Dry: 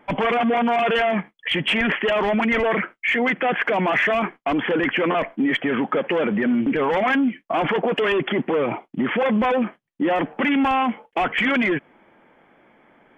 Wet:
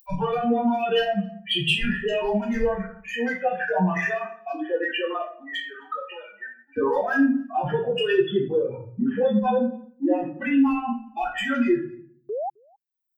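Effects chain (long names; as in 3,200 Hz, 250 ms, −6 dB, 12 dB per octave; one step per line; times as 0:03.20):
spectral dynamics exaggerated over time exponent 3
downward compressor, threshold −29 dBFS, peak gain reduction 9 dB
rectangular room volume 42 cubic metres, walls mixed, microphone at 1.2 metres
dynamic equaliser 1,100 Hz, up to −3 dB, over −36 dBFS, Q 0.77
0:04.14–0:06.76: high-pass filter 300 Hz → 1,100 Hz 24 dB per octave
0:12.29–0:12.50: sound drawn into the spectrogram rise 390–850 Hz −30 dBFS
upward compression, threshold −43 dBFS
Butterworth band-reject 2,200 Hz, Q 4.4
high-shelf EQ 3,600 Hz +9 dB
slap from a distant wall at 45 metres, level −28 dB
level +2 dB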